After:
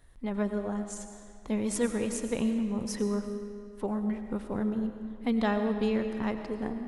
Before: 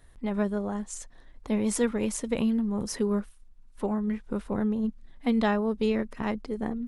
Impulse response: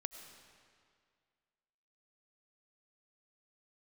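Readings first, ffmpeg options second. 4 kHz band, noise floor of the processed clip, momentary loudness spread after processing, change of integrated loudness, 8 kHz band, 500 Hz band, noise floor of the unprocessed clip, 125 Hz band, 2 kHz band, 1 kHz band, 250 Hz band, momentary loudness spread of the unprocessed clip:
−2.5 dB, −48 dBFS, 10 LU, −2.5 dB, −2.5 dB, −2.0 dB, −53 dBFS, −2.5 dB, −2.5 dB, −2.5 dB, −2.5 dB, 8 LU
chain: -filter_complex "[1:a]atrim=start_sample=2205[link_01];[0:a][link_01]afir=irnorm=-1:irlink=0"

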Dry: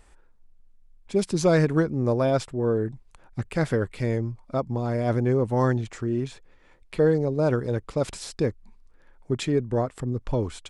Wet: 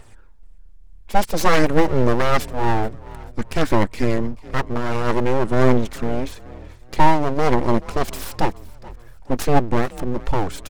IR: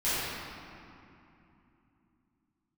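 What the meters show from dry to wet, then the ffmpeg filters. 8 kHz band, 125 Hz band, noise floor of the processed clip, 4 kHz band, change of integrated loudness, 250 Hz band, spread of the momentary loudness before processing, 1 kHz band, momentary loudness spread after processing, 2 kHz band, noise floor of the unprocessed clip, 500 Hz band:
+5.0 dB, +1.0 dB, −43 dBFS, +7.5 dB, +4.0 dB, +3.5 dB, 9 LU, +12.5 dB, 11 LU, +9.0 dB, −56 dBFS, +2.5 dB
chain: -filter_complex "[0:a]aphaser=in_gain=1:out_gain=1:delay=3.2:decay=0.38:speed=0.52:type=triangular,aeval=exprs='abs(val(0))':channel_layout=same,asplit=4[link_01][link_02][link_03][link_04];[link_02]adelay=431,afreqshift=40,volume=-21dB[link_05];[link_03]adelay=862,afreqshift=80,volume=-28.5dB[link_06];[link_04]adelay=1293,afreqshift=120,volume=-36.1dB[link_07];[link_01][link_05][link_06][link_07]amix=inputs=4:normalize=0,volume=7.5dB"

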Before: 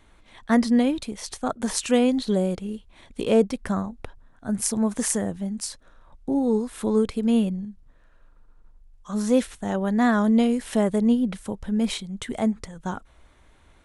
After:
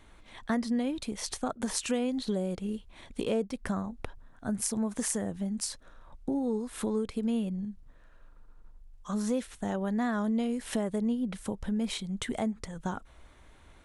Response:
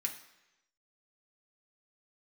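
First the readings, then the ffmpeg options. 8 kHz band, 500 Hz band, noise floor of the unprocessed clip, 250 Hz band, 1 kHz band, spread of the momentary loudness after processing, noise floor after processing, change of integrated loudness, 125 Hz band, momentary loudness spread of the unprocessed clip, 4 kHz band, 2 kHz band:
−5.5 dB, −9.0 dB, −55 dBFS, −8.5 dB, −8.0 dB, 11 LU, −55 dBFS, −8.5 dB, −6.5 dB, 13 LU, −5.5 dB, −7.5 dB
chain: -af "acompressor=threshold=-30dB:ratio=3"

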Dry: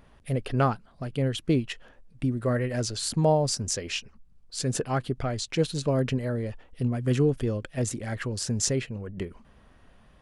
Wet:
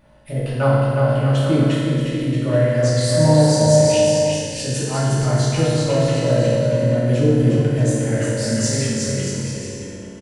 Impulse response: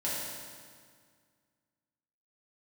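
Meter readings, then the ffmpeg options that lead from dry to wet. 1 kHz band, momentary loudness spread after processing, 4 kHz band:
+6.5 dB, 10 LU, +7.5 dB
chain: -filter_complex "[0:a]aecho=1:1:360|630|832.5|984.4|1098:0.631|0.398|0.251|0.158|0.1,acontrast=29[link_01];[1:a]atrim=start_sample=2205[link_02];[link_01][link_02]afir=irnorm=-1:irlink=0,volume=-5dB"

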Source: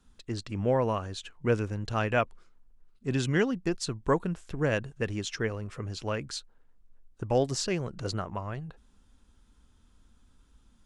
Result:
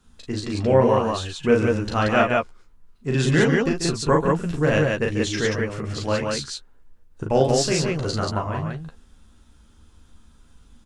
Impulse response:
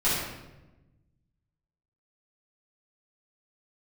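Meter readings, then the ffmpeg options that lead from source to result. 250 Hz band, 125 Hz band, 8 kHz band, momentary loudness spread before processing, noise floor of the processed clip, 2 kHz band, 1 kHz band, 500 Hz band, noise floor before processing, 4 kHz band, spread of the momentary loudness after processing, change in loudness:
+9.0 dB, +8.0 dB, +9.5 dB, 11 LU, −53 dBFS, +9.5 dB, +9.5 dB, +9.5 dB, −63 dBFS, +9.0 dB, 12 LU, +9.0 dB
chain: -filter_complex "[0:a]asplit=2[link_01][link_02];[link_02]adelay=13,volume=-7dB[link_03];[link_01][link_03]amix=inputs=2:normalize=0,aecho=1:1:37.9|139.9|180.8:0.708|0.355|0.794,volume=5dB"

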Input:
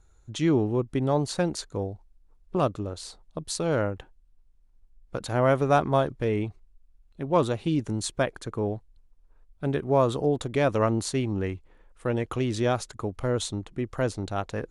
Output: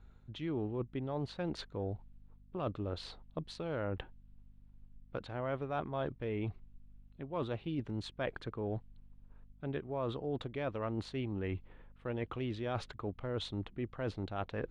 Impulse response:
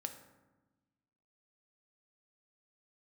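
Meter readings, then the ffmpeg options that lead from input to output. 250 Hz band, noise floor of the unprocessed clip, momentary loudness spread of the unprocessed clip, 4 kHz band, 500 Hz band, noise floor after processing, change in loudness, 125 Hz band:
−11.5 dB, −60 dBFS, 13 LU, −10.0 dB, −12.5 dB, −61 dBFS, −12.5 dB, −11.0 dB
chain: -af "areverse,acompressor=threshold=-35dB:ratio=6,areverse,aeval=exprs='val(0)+0.001*(sin(2*PI*50*n/s)+sin(2*PI*2*50*n/s)/2+sin(2*PI*3*50*n/s)/3+sin(2*PI*4*50*n/s)/4+sin(2*PI*5*50*n/s)/5)':channel_layout=same,adynamicsmooth=sensitivity=3.5:basefreq=6700,highshelf=frequency=4800:width_type=q:width=1.5:gain=-12"

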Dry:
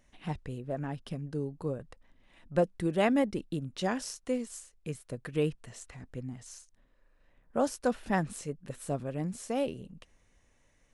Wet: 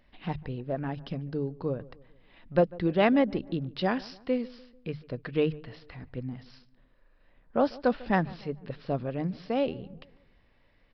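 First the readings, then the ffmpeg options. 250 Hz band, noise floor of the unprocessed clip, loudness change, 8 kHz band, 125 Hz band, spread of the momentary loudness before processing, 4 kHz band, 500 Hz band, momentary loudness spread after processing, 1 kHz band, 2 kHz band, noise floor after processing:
+3.5 dB, −68 dBFS, +3.5 dB, below −20 dB, +2.5 dB, 14 LU, +3.0 dB, +3.5 dB, 15 LU, +3.5 dB, +3.5 dB, −64 dBFS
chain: -filter_complex "[0:a]aresample=11025,aresample=44100,aeval=exprs='0.224*(cos(1*acos(clip(val(0)/0.224,-1,1)))-cos(1*PI/2))+0.00447*(cos(3*acos(clip(val(0)/0.224,-1,1)))-cos(3*PI/2))':channel_layout=same,bandreject=frequency=50:width_type=h:width=6,bandreject=frequency=100:width_type=h:width=6,bandreject=frequency=150:width_type=h:width=6,asplit=2[link_01][link_02];[link_02]adelay=147,lowpass=frequency=1500:poles=1,volume=-20.5dB,asplit=2[link_03][link_04];[link_04]adelay=147,lowpass=frequency=1500:poles=1,volume=0.49,asplit=2[link_05][link_06];[link_06]adelay=147,lowpass=frequency=1500:poles=1,volume=0.49,asplit=2[link_07][link_08];[link_08]adelay=147,lowpass=frequency=1500:poles=1,volume=0.49[link_09];[link_03][link_05][link_07][link_09]amix=inputs=4:normalize=0[link_10];[link_01][link_10]amix=inputs=2:normalize=0,volume=4dB"

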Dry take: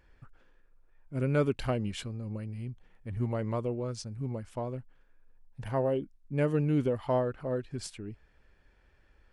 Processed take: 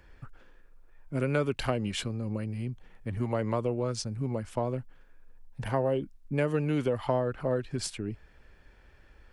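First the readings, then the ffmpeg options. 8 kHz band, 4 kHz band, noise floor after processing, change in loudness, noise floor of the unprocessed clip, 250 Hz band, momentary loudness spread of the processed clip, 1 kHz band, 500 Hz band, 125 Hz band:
+6.5 dB, +6.0 dB, −58 dBFS, +1.0 dB, −64 dBFS, +1.0 dB, 10 LU, +3.0 dB, +1.5 dB, +0.5 dB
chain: -filter_complex "[0:a]acrossover=split=180|530[link_01][link_02][link_03];[link_01]acompressor=threshold=-43dB:ratio=4[link_04];[link_02]acompressor=threshold=-39dB:ratio=4[link_05];[link_03]acompressor=threshold=-36dB:ratio=4[link_06];[link_04][link_05][link_06]amix=inputs=3:normalize=0,volume=7dB"

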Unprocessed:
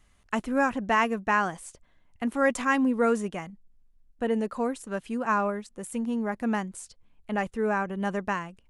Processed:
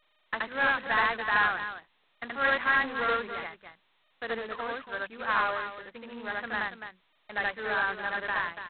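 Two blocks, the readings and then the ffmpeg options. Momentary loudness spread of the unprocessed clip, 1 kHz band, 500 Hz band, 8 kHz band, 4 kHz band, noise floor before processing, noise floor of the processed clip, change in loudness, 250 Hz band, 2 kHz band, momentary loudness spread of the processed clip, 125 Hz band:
12 LU, −1.5 dB, −7.0 dB, below −35 dB, +6.0 dB, −63 dBFS, −70 dBFS, −1.5 dB, −15.5 dB, +4.5 dB, 16 LU, −12.0 dB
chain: -filter_complex "[0:a]aeval=exprs='clip(val(0),-1,0.0596)':channel_layout=same,aeval=exprs='val(0)+0.00178*(sin(2*PI*60*n/s)+sin(2*PI*2*60*n/s)/2+sin(2*PI*3*60*n/s)/3+sin(2*PI*4*60*n/s)/4+sin(2*PI*5*60*n/s)/5)':channel_layout=same,acrossover=split=390 3000:gain=0.224 1 0.126[link_01][link_02][link_03];[link_01][link_02][link_03]amix=inputs=3:normalize=0,agate=range=-44dB:threshold=-60dB:ratio=16:detection=peak,equalizer=frequency=1700:width_type=o:width=1.2:gain=14,bandreject=frequency=50:width_type=h:width=6,bandreject=frequency=100:width_type=h:width=6,bandreject=frequency=150:width_type=h:width=6,bandreject=frequency=200:width_type=h:width=6,bandreject=frequency=250:width_type=h:width=6,anlmdn=0.0158,aecho=1:1:75.8|285.7:1|0.355,volume=-9dB" -ar 8000 -c:a adpcm_g726 -b:a 16k

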